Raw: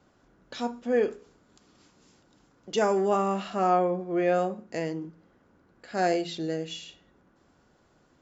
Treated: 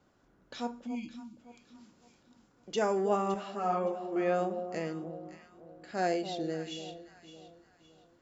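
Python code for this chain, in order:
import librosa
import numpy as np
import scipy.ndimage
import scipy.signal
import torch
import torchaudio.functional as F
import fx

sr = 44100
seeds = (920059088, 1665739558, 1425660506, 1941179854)

y = fx.spec_erase(x, sr, start_s=0.87, length_s=0.52, low_hz=330.0, high_hz=2100.0)
y = fx.echo_alternate(y, sr, ms=282, hz=900.0, feedback_pct=59, wet_db=-9.0)
y = fx.ensemble(y, sr, at=(3.34, 4.16))
y = F.gain(torch.from_numpy(y), -5.0).numpy()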